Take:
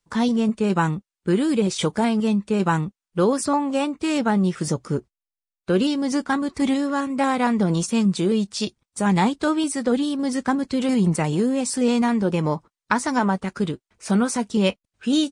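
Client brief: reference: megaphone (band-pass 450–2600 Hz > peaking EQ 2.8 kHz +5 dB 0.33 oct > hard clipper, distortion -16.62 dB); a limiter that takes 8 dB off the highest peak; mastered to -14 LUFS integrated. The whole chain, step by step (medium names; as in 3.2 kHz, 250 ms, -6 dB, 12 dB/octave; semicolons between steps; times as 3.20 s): peak limiter -14.5 dBFS; band-pass 450–2600 Hz; peaking EQ 2.8 kHz +5 dB 0.33 oct; hard clipper -21.5 dBFS; trim +17 dB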